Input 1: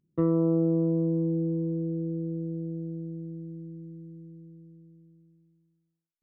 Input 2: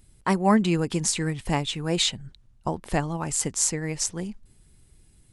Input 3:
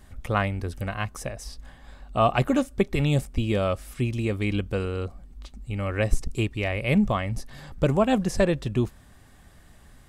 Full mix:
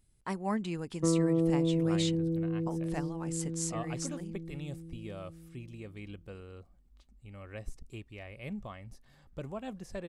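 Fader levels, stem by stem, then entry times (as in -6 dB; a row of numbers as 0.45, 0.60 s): -3.0, -13.0, -19.0 dB; 0.85, 0.00, 1.55 s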